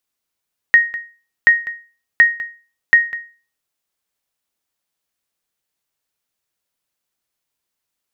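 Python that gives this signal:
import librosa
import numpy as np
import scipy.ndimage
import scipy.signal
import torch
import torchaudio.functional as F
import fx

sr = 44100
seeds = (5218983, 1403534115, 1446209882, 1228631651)

y = fx.sonar_ping(sr, hz=1870.0, decay_s=0.36, every_s=0.73, pings=4, echo_s=0.2, echo_db=-17.5, level_db=-2.0)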